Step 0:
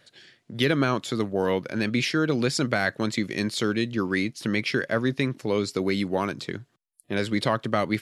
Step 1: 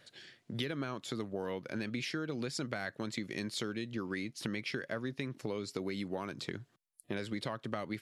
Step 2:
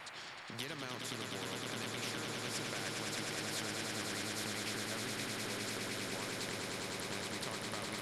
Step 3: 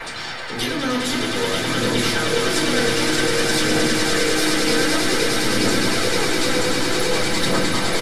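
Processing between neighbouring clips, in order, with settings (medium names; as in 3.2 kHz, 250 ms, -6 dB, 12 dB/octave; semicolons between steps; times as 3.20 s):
compression 6:1, threshold -32 dBFS, peak gain reduction 14 dB; trim -2.5 dB
on a send: echo with a slow build-up 103 ms, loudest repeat 8, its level -7.5 dB; on the sum: band noise 640–2300 Hz -53 dBFS; spectrum-flattening compressor 2:1; trim -5 dB
phaser 0.53 Hz, delay 4.2 ms, feedback 46%; delay 933 ms -4.5 dB; simulated room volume 120 m³, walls furnished, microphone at 4.8 m; trim +7.5 dB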